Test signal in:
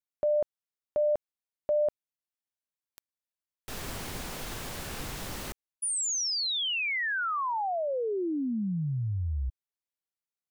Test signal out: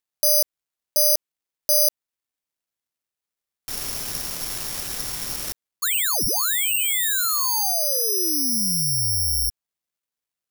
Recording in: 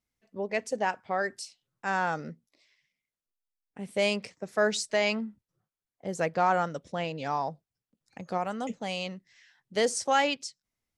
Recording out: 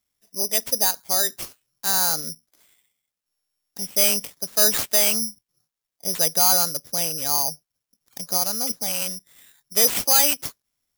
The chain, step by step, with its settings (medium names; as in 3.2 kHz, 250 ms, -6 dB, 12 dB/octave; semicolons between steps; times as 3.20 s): careless resampling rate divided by 8×, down none, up zero stuff; companded quantiser 8-bit; trim -1 dB